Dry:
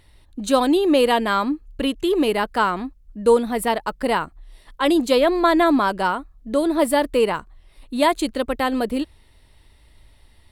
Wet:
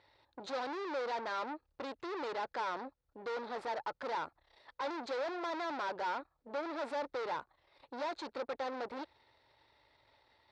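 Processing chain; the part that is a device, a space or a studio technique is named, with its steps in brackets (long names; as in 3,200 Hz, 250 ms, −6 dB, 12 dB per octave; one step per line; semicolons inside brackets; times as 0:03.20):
guitar amplifier (tube saturation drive 34 dB, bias 0.75; bass and treble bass −13 dB, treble +7 dB; loudspeaker in its box 87–4,200 Hz, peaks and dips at 120 Hz +6 dB, 200 Hz −8 dB, 540 Hz +5 dB, 870 Hz +7 dB, 1,400 Hz +4 dB, 3,000 Hz −8 dB)
level −4 dB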